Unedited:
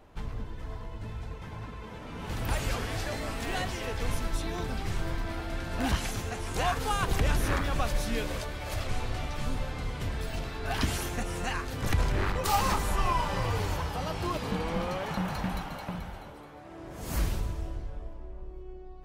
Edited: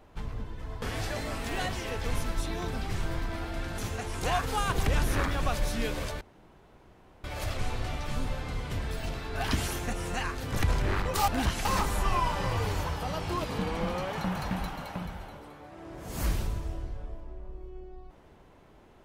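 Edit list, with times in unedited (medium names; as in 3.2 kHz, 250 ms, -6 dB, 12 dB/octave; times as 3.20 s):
0.82–2.78 s: delete
5.74–6.11 s: move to 12.58 s
8.54 s: insert room tone 1.03 s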